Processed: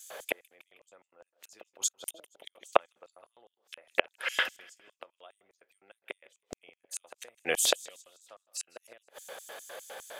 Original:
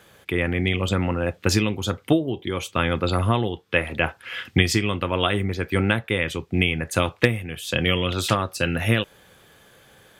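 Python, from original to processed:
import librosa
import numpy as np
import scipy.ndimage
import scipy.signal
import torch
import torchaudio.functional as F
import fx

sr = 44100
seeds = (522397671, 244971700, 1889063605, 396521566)

y = fx.gate_flip(x, sr, shuts_db=-17.0, range_db=-41)
y = fx.echo_feedback(y, sr, ms=158, feedback_pct=42, wet_db=-22.0)
y = fx.filter_lfo_highpass(y, sr, shape='square', hz=4.9, low_hz=600.0, high_hz=7000.0, q=2.9)
y = F.gain(torch.from_numpy(y), 6.5).numpy()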